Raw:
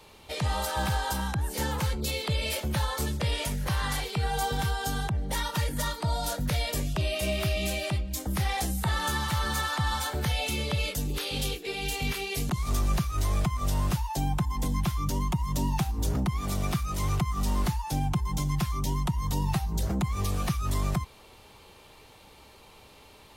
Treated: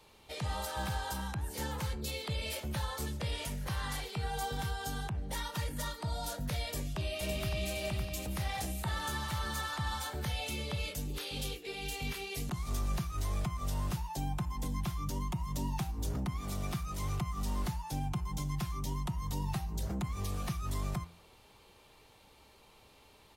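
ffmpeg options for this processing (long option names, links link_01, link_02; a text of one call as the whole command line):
ffmpeg -i in.wav -filter_complex "[0:a]asplit=2[link_01][link_02];[link_02]afade=type=in:start_time=6.64:duration=0.01,afade=type=out:start_time=7.7:duration=0.01,aecho=0:1:560|1120|1680|2240|2800:0.530884|0.238898|0.107504|0.0483768|0.0217696[link_03];[link_01][link_03]amix=inputs=2:normalize=0,bandreject=frequency=84.99:width_type=h:width=4,bandreject=frequency=169.98:width_type=h:width=4,bandreject=frequency=254.97:width_type=h:width=4,bandreject=frequency=339.96:width_type=h:width=4,bandreject=frequency=424.95:width_type=h:width=4,bandreject=frequency=509.94:width_type=h:width=4,bandreject=frequency=594.93:width_type=h:width=4,bandreject=frequency=679.92:width_type=h:width=4,bandreject=frequency=764.91:width_type=h:width=4,bandreject=frequency=849.9:width_type=h:width=4,bandreject=frequency=934.89:width_type=h:width=4,bandreject=frequency=1019.88:width_type=h:width=4,bandreject=frequency=1104.87:width_type=h:width=4,bandreject=frequency=1189.86:width_type=h:width=4,bandreject=frequency=1274.85:width_type=h:width=4,bandreject=frequency=1359.84:width_type=h:width=4,bandreject=frequency=1444.83:width_type=h:width=4,bandreject=frequency=1529.82:width_type=h:width=4,bandreject=frequency=1614.81:width_type=h:width=4,bandreject=frequency=1699.8:width_type=h:width=4,bandreject=frequency=1784.79:width_type=h:width=4,bandreject=frequency=1869.78:width_type=h:width=4,bandreject=frequency=1954.77:width_type=h:width=4,bandreject=frequency=2039.76:width_type=h:width=4,bandreject=frequency=2124.75:width_type=h:width=4,bandreject=frequency=2209.74:width_type=h:width=4,bandreject=frequency=2294.73:width_type=h:width=4,bandreject=frequency=2379.72:width_type=h:width=4,bandreject=frequency=2464.71:width_type=h:width=4,bandreject=frequency=2549.7:width_type=h:width=4,bandreject=frequency=2634.69:width_type=h:width=4,bandreject=frequency=2719.68:width_type=h:width=4,bandreject=frequency=2804.67:width_type=h:width=4,bandreject=frequency=2889.66:width_type=h:width=4,bandreject=frequency=2974.65:width_type=h:width=4,bandreject=frequency=3059.64:width_type=h:width=4,volume=-7.5dB" out.wav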